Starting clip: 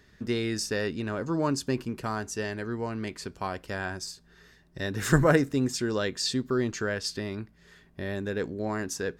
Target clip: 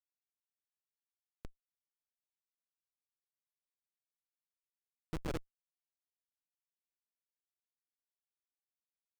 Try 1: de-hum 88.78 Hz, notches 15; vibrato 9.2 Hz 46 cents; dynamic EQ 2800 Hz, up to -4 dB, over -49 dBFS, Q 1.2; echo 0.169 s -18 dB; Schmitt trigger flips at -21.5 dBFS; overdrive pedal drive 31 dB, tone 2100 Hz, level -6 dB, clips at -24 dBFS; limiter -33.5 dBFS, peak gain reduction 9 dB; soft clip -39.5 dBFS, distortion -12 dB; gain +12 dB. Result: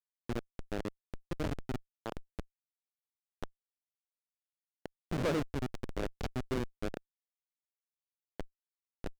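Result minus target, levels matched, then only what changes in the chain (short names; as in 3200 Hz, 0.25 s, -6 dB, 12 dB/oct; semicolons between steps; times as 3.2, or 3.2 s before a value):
soft clip: distortion -6 dB; Schmitt trigger: distortion -4 dB
change: Schmitt trigger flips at -15 dBFS; change: soft clip -45.5 dBFS, distortion -6 dB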